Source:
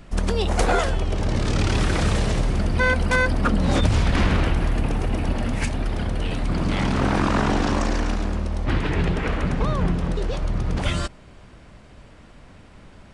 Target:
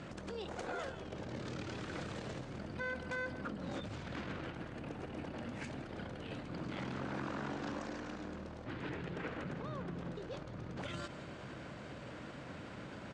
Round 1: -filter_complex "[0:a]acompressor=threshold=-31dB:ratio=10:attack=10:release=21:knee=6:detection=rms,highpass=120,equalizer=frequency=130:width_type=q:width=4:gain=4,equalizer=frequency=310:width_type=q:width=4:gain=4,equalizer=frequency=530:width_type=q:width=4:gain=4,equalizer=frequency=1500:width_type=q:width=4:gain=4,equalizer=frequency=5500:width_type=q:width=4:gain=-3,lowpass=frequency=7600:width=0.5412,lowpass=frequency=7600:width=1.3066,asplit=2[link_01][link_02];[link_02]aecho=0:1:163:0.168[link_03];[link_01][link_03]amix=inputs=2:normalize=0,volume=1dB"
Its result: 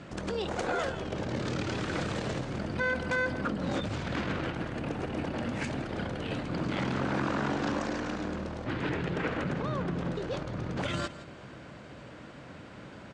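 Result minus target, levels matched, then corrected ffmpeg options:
downward compressor: peak gain reduction −10.5 dB
-filter_complex "[0:a]acompressor=threshold=-42.5dB:ratio=10:attack=10:release=21:knee=6:detection=rms,highpass=120,equalizer=frequency=130:width_type=q:width=4:gain=4,equalizer=frequency=310:width_type=q:width=4:gain=4,equalizer=frequency=530:width_type=q:width=4:gain=4,equalizer=frequency=1500:width_type=q:width=4:gain=4,equalizer=frequency=5500:width_type=q:width=4:gain=-3,lowpass=frequency=7600:width=0.5412,lowpass=frequency=7600:width=1.3066,asplit=2[link_01][link_02];[link_02]aecho=0:1:163:0.168[link_03];[link_01][link_03]amix=inputs=2:normalize=0,volume=1dB"

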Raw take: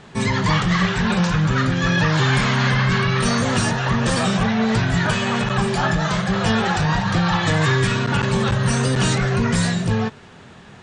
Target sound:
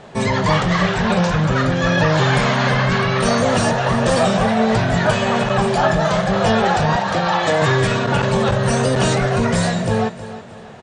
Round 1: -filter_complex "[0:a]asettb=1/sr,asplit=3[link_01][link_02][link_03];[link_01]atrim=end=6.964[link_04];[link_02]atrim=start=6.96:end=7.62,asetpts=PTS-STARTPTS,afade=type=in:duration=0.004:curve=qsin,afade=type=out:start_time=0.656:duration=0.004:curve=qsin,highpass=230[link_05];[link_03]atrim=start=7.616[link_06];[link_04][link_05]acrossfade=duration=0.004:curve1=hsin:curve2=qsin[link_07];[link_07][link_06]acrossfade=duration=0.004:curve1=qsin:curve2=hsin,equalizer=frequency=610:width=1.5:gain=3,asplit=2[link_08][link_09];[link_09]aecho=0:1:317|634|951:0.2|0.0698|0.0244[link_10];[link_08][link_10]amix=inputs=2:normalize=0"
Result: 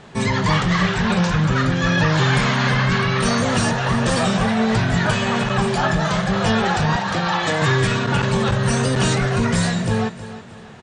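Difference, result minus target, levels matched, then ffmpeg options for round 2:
500 Hz band −3.5 dB
-filter_complex "[0:a]asettb=1/sr,asplit=3[link_01][link_02][link_03];[link_01]atrim=end=6.964[link_04];[link_02]atrim=start=6.96:end=7.62,asetpts=PTS-STARTPTS,afade=type=in:duration=0.004:curve=qsin,afade=type=out:start_time=0.656:duration=0.004:curve=qsin,highpass=230[link_05];[link_03]atrim=start=7.616[link_06];[link_04][link_05]acrossfade=duration=0.004:curve1=hsin:curve2=qsin[link_07];[link_07][link_06]acrossfade=duration=0.004:curve1=qsin:curve2=hsin,equalizer=frequency=610:width=1.5:gain=11,asplit=2[link_08][link_09];[link_09]aecho=0:1:317|634|951:0.2|0.0698|0.0244[link_10];[link_08][link_10]amix=inputs=2:normalize=0"

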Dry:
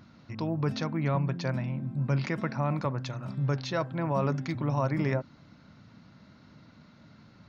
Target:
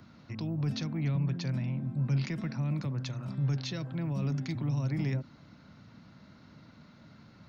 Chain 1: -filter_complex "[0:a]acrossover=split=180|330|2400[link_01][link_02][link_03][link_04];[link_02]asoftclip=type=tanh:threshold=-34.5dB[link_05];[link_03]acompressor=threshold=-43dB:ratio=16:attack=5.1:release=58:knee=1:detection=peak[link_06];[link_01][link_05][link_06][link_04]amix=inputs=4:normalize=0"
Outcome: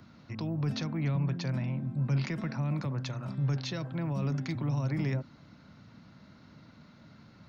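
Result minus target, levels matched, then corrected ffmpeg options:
downward compressor: peak gain reduction −6.5 dB
-filter_complex "[0:a]acrossover=split=180|330|2400[link_01][link_02][link_03][link_04];[link_02]asoftclip=type=tanh:threshold=-34.5dB[link_05];[link_03]acompressor=threshold=-50dB:ratio=16:attack=5.1:release=58:knee=1:detection=peak[link_06];[link_01][link_05][link_06][link_04]amix=inputs=4:normalize=0"

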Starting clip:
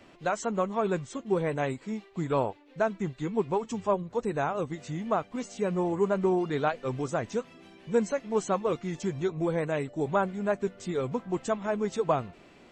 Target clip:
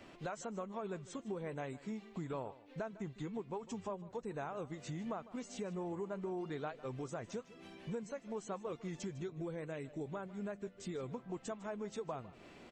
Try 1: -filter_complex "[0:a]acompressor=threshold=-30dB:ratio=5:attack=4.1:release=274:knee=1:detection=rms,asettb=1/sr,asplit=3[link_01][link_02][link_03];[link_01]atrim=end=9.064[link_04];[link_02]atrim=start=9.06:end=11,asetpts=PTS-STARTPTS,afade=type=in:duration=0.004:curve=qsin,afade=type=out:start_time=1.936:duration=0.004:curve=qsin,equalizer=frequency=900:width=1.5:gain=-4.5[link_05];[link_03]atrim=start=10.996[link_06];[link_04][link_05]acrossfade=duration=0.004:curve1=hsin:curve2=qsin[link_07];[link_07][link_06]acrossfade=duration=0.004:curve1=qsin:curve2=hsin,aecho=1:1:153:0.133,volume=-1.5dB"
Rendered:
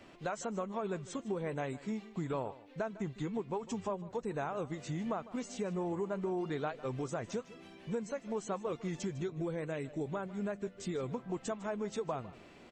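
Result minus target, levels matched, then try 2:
downward compressor: peak gain reduction −5 dB
-filter_complex "[0:a]acompressor=threshold=-36.5dB:ratio=5:attack=4.1:release=274:knee=1:detection=rms,asettb=1/sr,asplit=3[link_01][link_02][link_03];[link_01]atrim=end=9.064[link_04];[link_02]atrim=start=9.06:end=11,asetpts=PTS-STARTPTS,afade=type=in:duration=0.004:curve=qsin,afade=type=out:start_time=1.936:duration=0.004:curve=qsin,equalizer=frequency=900:width=1.5:gain=-4.5[link_05];[link_03]atrim=start=10.996[link_06];[link_04][link_05]acrossfade=duration=0.004:curve1=hsin:curve2=qsin[link_07];[link_07][link_06]acrossfade=duration=0.004:curve1=qsin:curve2=hsin,aecho=1:1:153:0.133,volume=-1.5dB"

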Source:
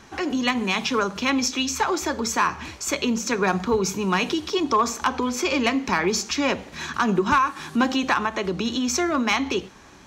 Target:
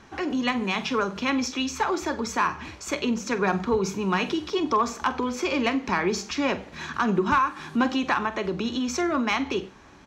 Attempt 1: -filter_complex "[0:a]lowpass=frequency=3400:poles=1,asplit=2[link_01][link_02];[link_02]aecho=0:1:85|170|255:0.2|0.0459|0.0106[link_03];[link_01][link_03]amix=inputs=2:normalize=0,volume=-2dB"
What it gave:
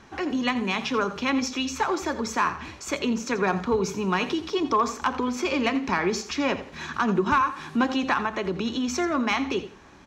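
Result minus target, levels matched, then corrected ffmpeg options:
echo 39 ms late
-filter_complex "[0:a]lowpass=frequency=3400:poles=1,asplit=2[link_01][link_02];[link_02]aecho=0:1:46|92|138:0.2|0.0459|0.0106[link_03];[link_01][link_03]amix=inputs=2:normalize=0,volume=-2dB"

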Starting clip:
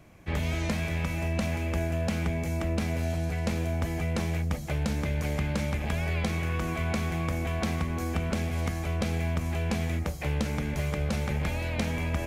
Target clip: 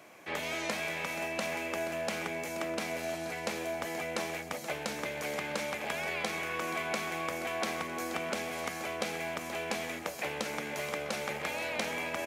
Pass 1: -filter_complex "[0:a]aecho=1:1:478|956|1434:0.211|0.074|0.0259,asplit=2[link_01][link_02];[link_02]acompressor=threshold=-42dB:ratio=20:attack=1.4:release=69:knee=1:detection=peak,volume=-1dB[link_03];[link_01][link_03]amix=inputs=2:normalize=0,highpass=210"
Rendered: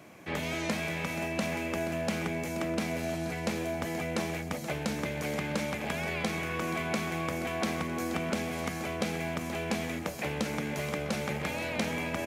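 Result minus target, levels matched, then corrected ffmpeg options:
250 Hz band +6.0 dB
-filter_complex "[0:a]aecho=1:1:478|956|1434:0.211|0.074|0.0259,asplit=2[link_01][link_02];[link_02]acompressor=threshold=-42dB:ratio=20:attack=1.4:release=69:knee=1:detection=peak,volume=-1dB[link_03];[link_01][link_03]amix=inputs=2:normalize=0,highpass=440"

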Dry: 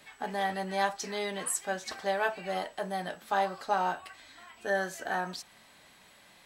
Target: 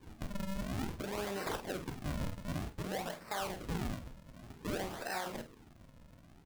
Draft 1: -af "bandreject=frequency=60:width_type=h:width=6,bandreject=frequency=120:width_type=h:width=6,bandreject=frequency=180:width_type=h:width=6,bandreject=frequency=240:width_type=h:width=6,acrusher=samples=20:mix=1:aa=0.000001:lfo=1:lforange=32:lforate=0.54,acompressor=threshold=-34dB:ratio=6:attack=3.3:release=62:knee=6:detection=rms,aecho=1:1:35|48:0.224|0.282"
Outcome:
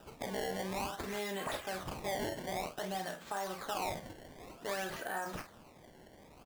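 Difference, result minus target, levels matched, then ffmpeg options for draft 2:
sample-and-hold swept by an LFO: distortion −11 dB
-af "bandreject=frequency=60:width_type=h:width=6,bandreject=frequency=120:width_type=h:width=6,bandreject=frequency=180:width_type=h:width=6,bandreject=frequency=240:width_type=h:width=6,acrusher=samples=64:mix=1:aa=0.000001:lfo=1:lforange=102:lforate=0.54,acompressor=threshold=-34dB:ratio=6:attack=3.3:release=62:knee=6:detection=rms,aecho=1:1:35|48:0.224|0.282"

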